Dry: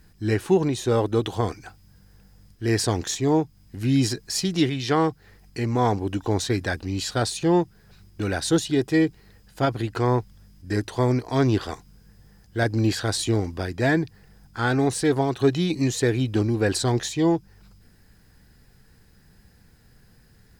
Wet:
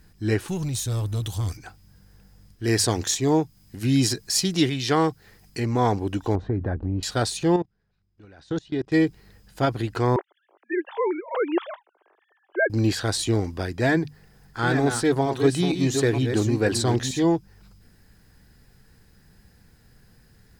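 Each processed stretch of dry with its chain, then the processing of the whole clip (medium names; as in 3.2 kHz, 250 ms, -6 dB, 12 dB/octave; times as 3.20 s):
0.48–1.57 s: FFT filter 100 Hz 0 dB, 370 Hz -20 dB, 1.9 kHz -13 dB, 12 kHz +5 dB + waveshaping leveller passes 2
2.64–5.60 s: treble shelf 4.2 kHz +6 dB + hum notches 50/100 Hz
6.35–7.03 s: low-pass 1.1 kHz + tilt EQ -2 dB/octave + compression 4:1, threshold -21 dBFS
7.56–8.92 s: level held to a coarse grid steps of 24 dB + distance through air 130 m
10.16–12.70 s: formants replaced by sine waves + steep high-pass 350 Hz 48 dB/octave
13.87–17.24 s: chunks repeated in reverse 463 ms, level -7 dB + hum notches 50/100/150/200/250 Hz
whole clip: none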